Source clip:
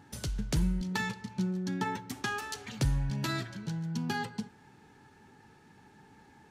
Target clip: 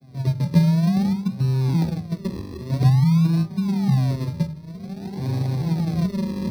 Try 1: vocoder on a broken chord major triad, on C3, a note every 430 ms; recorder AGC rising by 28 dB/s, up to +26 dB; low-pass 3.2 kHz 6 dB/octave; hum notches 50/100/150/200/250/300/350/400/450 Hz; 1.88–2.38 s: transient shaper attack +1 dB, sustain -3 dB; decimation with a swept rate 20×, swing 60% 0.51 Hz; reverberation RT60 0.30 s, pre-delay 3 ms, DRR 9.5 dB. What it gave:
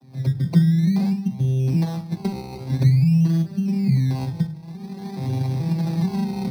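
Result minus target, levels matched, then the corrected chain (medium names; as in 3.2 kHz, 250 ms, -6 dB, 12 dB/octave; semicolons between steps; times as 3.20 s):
decimation with a swept rate: distortion -6 dB
vocoder on a broken chord major triad, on C3, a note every 430 ms; recorder AGC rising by 28 dB/s, up to +26 dB; low-pass 3.2 kHz 6 dB/octave; hum notches 50/100/150/200/250/300/350/400/450 Hz; 1.88–2.38 s: transient shaper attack +1 dB, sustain -3 dB; decimation with a swept rate 46×, swing 60% 0.51 Hz; reverberation RT60 0.30 s, pre-delay 3 ms, DRR 9.5 dB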